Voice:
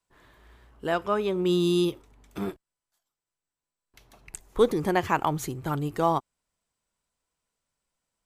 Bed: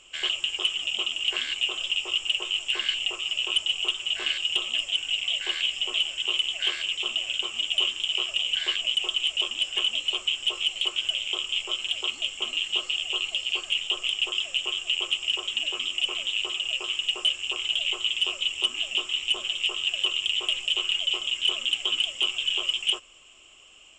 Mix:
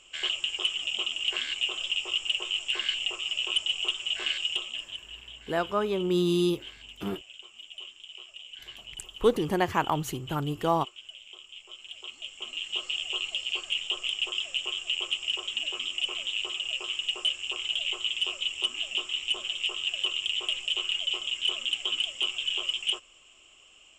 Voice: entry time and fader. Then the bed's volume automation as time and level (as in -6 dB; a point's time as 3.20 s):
4.65 s, -1.5 dB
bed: 4.45 s -2.5 dB
5.21 s -18.5 dB
11.56 s -18.5 dB
12.93 s -3.5 dB